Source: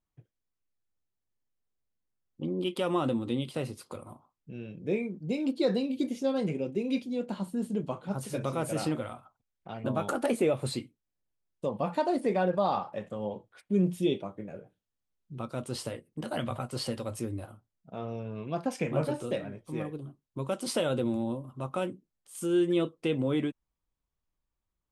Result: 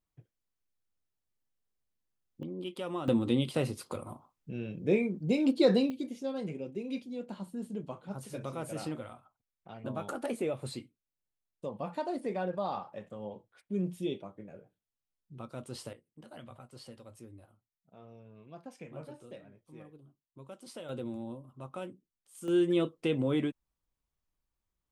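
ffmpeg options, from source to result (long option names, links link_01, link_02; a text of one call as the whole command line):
ffmpeg -i in.wav -af "asetnsamples=nb_out_samples=441:pad=0,asendcmd='2.43 volume volume -8dB;3.08 volume volume 3dB;5.9 volume volume -7dB;15.93 volume volume -16dB;20.89 volume volume -9dB;22.48 volume volume -1dB',volume=-1dB" out.wav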